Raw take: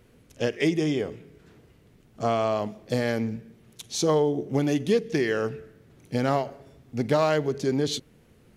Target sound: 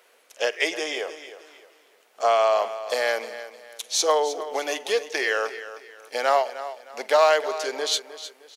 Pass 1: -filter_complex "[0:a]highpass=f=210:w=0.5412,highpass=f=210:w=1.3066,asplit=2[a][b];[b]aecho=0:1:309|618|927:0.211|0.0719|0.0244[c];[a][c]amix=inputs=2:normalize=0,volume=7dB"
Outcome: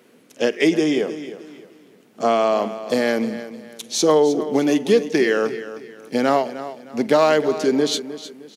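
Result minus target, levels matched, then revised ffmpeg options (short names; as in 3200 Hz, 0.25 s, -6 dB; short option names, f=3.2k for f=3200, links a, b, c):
250 Hz band +17.5 dB
-filter_complex "[0:a]highpass=f=570:w=0.5412,highpass=f=570:w=1.3066,asplit=2[a][b];[b]aecho=0:1:309|618|927:0.211|0.0719|0.0244[c];[a][c]amix=inputs=2:normalize=0,volume=7dB"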